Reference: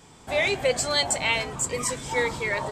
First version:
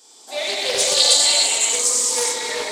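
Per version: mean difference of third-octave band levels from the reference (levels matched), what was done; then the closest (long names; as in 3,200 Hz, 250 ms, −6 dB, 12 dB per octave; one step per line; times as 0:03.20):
11.5 dB: high-pass filter 310 Hz 24 dB per octave
high shelf with overshoot 3,200 Hz +11.5 dB, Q 1.5
reverb whose tail is shaped and stops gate 470 ms flat, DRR −7 dB
highs frequency-modulated by the lows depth 0.15 ms
level −6.5 dB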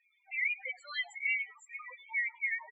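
26.0 dB: resonant band-pass 2,300 Hz, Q 2.2
spectral peaks only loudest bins 4
high-frequency loss of the air 87 metres
slap from a distant wall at 18 metres, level −28 dB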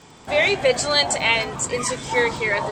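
1.5 dB: low-pass filter 7,000 Hz 12 dB per octave
low-shelf EQ 93 Hz −7.5 dB
surface crackle 21 per second −39 dBFS
level +5.5 dB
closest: third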